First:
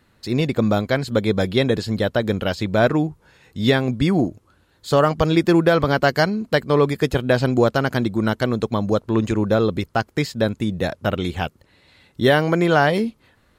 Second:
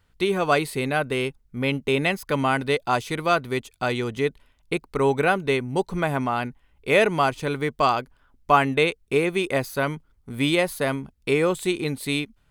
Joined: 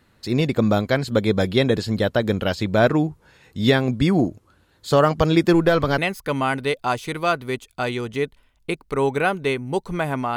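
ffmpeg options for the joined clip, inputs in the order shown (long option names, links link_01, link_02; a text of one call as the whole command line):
ffmpeg -i cue0.wav -i cue1.wav -filter_complex "[0:a]asettb=1/sr,asplit=3[link_01][link_02][link_03];[link_01]atrim=end=5.534[link_04];[link_02]atrim=start=5.53:end=5.98,asetpts=PTS-STARTPTS,afade=type=in:duration=0.004:curve=qsin,afade=type=out:start_time=0.446:duration=0.004:curve=qsin,aeval=exprs='if(lt(val(0),0),0.708*val(0),val(0))':channel_layout=same[link_05];[link_03]atrim=start=5.976[link_06];[link_04][link_05]acrossfade=duration=0.004:curve1=hsin:curve2=qsin[link_07];[link_07][link_06]acrossfade=duration=0.004:curve1=qsin:curve2=hsin,apad=whole_dur=10.36,atrim=end=10.36,atrim=end=5.982[link_08];[1:a]atrim=start=2.008:end=6.39[link_09];[link_08][link_09]acrossfade=duration=0.004:curve1=hsin:curve2=hsin" out.wav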